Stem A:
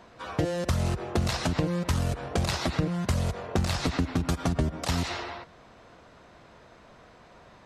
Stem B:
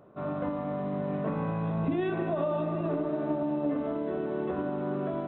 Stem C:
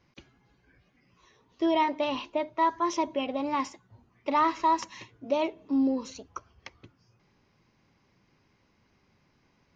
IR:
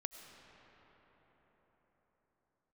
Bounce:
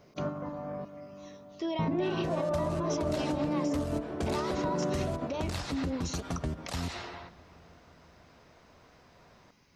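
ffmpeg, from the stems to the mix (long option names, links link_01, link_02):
-filter_complex "[0:a]adelay=1850,volume=-9dB,asplit=2[link_01][link_02];[link_02]volume=-7.5dB[link_03];[1:a]lowpass=2100,aphaser=in_gain=1:out_gain=1:delay=2.1:decay=0.23:speed=0.53:type=triangular,volume=-1dB,asplit=3[link_04][link_05][link_06];[link_04]atrim=end=0.85,asetpts=PTS-STARTPTS,afade=type=out:start_time=0.846:duration=0.004:curve=hsin[link_07];[link_05]atrim=start=0.85:end=1.79,asetpts=PTS-STARTPTS,volume=0[link_08];[link_06]atrim=start=1.79,asetpts=PTS-STARTPTS,afade=type=in:duration=0.004:curve=hsin[link_09];[link_07][link_08][link_09]concat=n=3:v=0:a=1,asplit=2[link_10][link_11];[link_11]volume=-5.5dB[link_12];[2:a]highshelf=frequency=4800:gain=11,acompressor=threshold=-32dB:ratio=6,volume=1.5dB,asplit=2[link_13][link_14];[link_14]apad=whole_len=232685[link_15];[link_10][link_15]sidechaingate=range=-13dB:threshold=-53dB:ratio=16:detection=peak[link_16];[link_01][link_13]amix=inputs=2:normalize=0,alimiter=level_in=2dB:limit=-24dB:level=0:latency=1:release=28,volume=-2dB,volume=0dB[link_17];[3:a]atrim=start_sample=2205[link_18];[link_03][link_12]amix=inputs=2:normalize=0[link_19];[link_19][link_18]afir=irnorm=-1:irlink=0[link_20];[link_16][link_17][link_20]amix=inputs=3:normalize=0,alimiter=limit=-21dB:level=0:latency=1:release=292"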